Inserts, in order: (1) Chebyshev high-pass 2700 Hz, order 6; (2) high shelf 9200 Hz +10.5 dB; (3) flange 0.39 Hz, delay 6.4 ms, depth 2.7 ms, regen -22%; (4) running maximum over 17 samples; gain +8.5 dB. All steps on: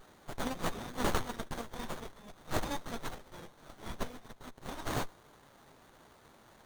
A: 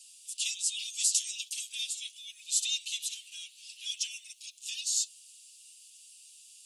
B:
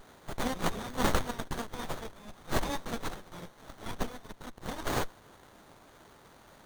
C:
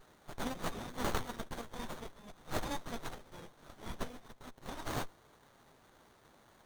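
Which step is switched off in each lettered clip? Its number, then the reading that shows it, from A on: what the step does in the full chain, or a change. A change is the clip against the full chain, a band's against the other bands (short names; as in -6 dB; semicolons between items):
4, loudness change +7.5 LU; 3, loudness change +3.5 LU; 2, momentary loudness spread change -9 LU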